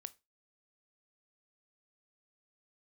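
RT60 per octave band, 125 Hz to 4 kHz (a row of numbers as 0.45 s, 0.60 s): 0.25 s, 0.25 s, 0.25 s, 0.25 s, 0.25 s, 0.25 s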